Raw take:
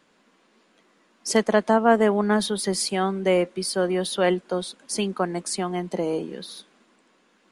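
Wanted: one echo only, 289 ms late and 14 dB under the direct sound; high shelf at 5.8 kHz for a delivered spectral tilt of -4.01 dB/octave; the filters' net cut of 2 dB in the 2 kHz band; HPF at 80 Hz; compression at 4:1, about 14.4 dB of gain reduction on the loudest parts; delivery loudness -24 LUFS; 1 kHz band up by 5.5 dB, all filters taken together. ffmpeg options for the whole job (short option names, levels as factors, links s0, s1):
-af "highpass=80,equalizer=f=1000:t=o:g=9,equalizer=f=2000:t=o:g=-6,highshelf=f=5800:g=-5,acompressor=threshold=0.0501:ratio=4,aecho=1:1:289:0.2,volume=2.11"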